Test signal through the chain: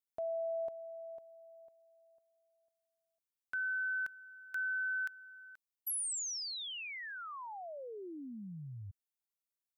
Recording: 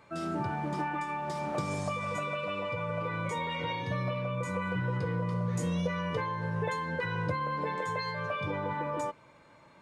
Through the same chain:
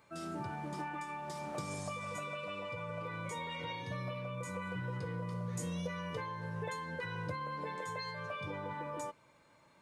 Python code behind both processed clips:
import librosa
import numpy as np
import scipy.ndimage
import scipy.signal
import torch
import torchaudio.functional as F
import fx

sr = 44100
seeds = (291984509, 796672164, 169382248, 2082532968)

y = fx.high_shelf(x, sr, hz=5500.0, db=11.0)
y = y * librosa.db_to_amplitude(-8.0)